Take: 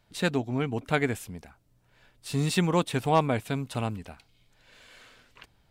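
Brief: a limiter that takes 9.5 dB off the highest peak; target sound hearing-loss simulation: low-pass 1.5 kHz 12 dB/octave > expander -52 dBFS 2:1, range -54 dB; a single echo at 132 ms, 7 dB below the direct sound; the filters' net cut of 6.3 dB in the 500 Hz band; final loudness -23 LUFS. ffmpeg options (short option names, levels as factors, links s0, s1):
-af "equalizer=f=500:t=o:g=-8,alimiter=limit=0.0891:level=0:latency=1,lowpass=1500,aecho=1:1:132:0.447,agate=range=0.002:threshold=0.00251:ratio=2,volume=2.99"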